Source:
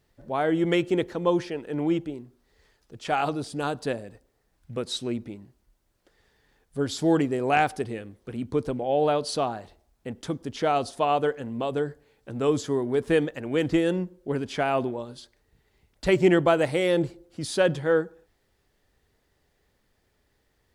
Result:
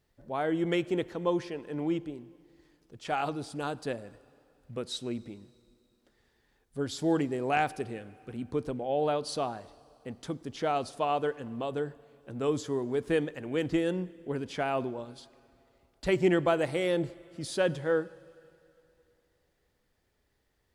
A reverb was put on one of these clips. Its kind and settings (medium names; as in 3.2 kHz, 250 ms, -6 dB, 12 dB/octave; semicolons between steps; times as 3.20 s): plate-style reverb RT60 2.8 s, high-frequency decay 0.95×, DRR 20 dB; trim -5.5 dB